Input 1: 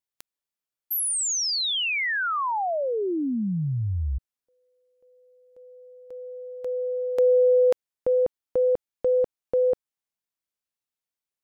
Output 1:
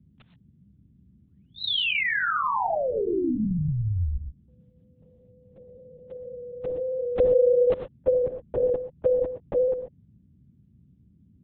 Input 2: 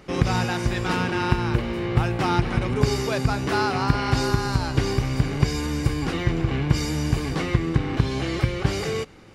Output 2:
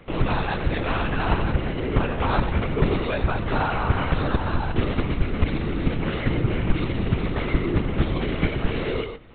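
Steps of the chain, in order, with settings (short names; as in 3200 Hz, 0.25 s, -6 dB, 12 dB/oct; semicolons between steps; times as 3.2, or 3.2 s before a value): non-linear reverb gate 0.15 s rising, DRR 9 dB; LPC vocoder at 8 kHz whisper; band noise 56–220 Hz -57 dBFS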